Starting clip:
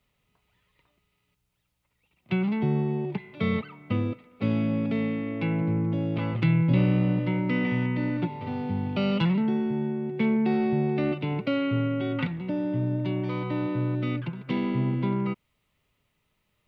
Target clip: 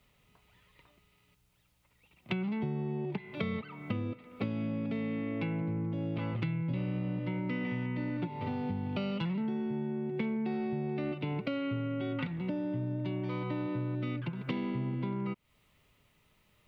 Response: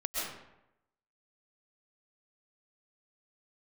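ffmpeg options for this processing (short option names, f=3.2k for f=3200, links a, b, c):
-af "acompressor=threshold=-38dB:ratio=6,volume=5.5dB"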